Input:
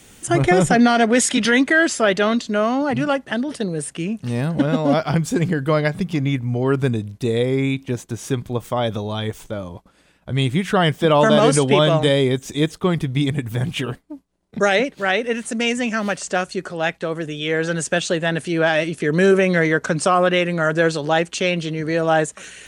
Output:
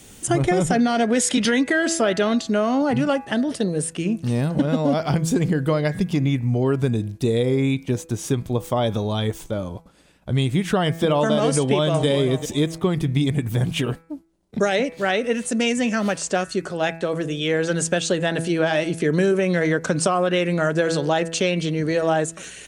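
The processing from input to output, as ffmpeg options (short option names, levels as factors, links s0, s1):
-filter_complex "[0:a]asplit=2[s0][s1];[s1]afade=t=in:st=11.55:d=0.01,afade=t=out:st=12.06:d=0.01,aecho=0:1:390|780:0.237137|0.0355706[s2];[s0][s2]amix=inputs=2:normalize=0,equalizer=f=1700:w=0.7:g=-4.5,bandreject=f=164.6:t=h:w=4,bandreject=f=329.2:t=h:w=4,bandreject=f=493.8:t=h:w=4,bandreject=f=658.4:t=h:w=4,bandreject=f=823:t=h:w=4,bandreject=f=987.6:t=h:w=4,bandreject=f=1152.2:t=h:w=4,bandreject=f=1316.8:t=h:w=4,bandreject=f=1481.4:t=h:w=4,bandreject=f=1646:t=h:w=4,bandreject=f=1810.6:t=h:w=4,bandreject=f=1975.2:t=h:w=4,bandreject=f=2139.8:t=h:w=4,bandreject=f=2304.4:t=h:w=4,bandreject=f=2469:t=h:w=4,bandreject=f=2633.6:t=h:w=4,acompressor=threshold=0.126:ratio=6,volume=1.33"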